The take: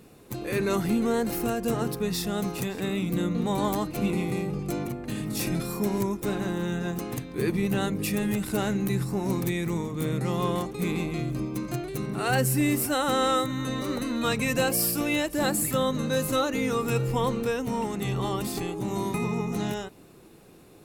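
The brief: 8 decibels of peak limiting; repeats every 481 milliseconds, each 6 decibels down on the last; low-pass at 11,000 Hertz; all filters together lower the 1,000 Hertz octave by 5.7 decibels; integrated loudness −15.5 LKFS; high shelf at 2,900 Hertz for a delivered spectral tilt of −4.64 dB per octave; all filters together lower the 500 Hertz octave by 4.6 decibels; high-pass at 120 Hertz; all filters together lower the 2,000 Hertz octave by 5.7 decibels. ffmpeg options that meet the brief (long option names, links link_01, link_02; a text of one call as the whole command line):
ffmpeg -i in.wav -af "highpass=120,lowpass=11000,equalizer=frequency=500:width_type=o:gain=-4.5,equalizer=frequency=1000:width_type=o:gain=-4.5,equalizer=frequency=2000:width_type=o:gain=-8.5,highshelf=frequency=2900:gain=5.5,alimiter=limit=-20.5dB:level=0:latency=1,aecho=1:1:481|962|1443|1924|2405|2886:0.501|0.251|0.125|0.0626|0.0313|0.0157,volume=14dB" out.wav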